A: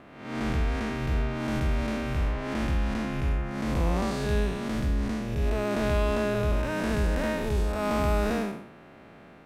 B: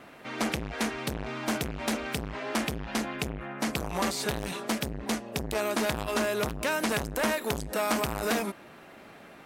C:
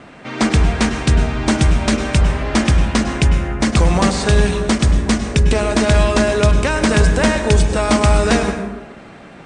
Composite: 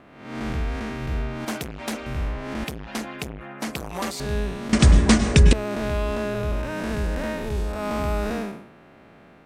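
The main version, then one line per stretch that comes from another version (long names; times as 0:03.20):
A
0:01.45–0:02.06: punch in from B
0:02.64–0:04.20: punch in from B
0:04.73–0:05.53: punch in from C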